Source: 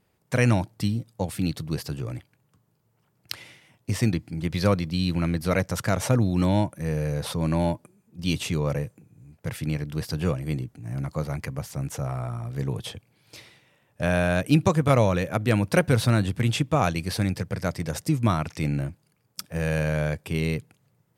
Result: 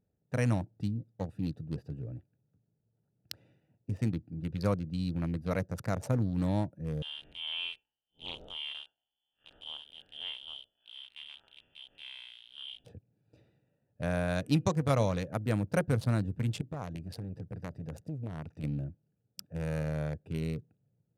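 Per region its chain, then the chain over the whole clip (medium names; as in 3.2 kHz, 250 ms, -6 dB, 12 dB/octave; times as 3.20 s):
7.02–12.85 s: spectral blur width 110 ms + frequency inversion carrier 3.3 kHz + loudspeaker Doppler distortion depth 0.24 ms
14.28–15.28 s: peaking EQ 4.3 kHz +7 dB 1.4 oct + de-hum 245.9 Hz, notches 13
16.61–18.64 s: compression 3:1, threshold -24 dBFS + transformer saturation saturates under 400 Hz
whole clip: local Wiener filter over 41 samples; band-stop 360 Hz, Q 12; dynamic bell 2.7 kHz, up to -5 dB, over -45 dBFS, Q 1.2; trim -7.5 dB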